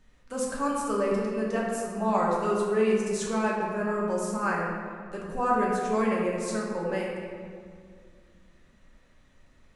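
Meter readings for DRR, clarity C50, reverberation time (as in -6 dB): -4.0 dB, 0.0 dB, 2.1 s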